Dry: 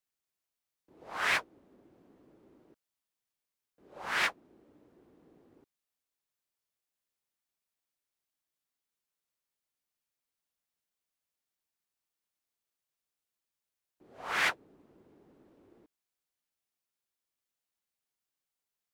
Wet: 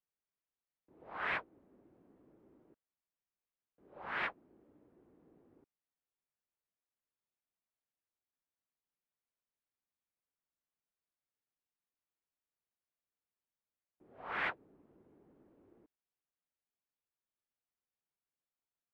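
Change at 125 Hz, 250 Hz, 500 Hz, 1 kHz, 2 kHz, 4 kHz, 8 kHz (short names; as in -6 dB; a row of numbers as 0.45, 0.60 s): -3.5 dB, -3.5 dB, -4.5 dB, -5.5 dB, -7.5 dB, -14.0 dB, under -30 dB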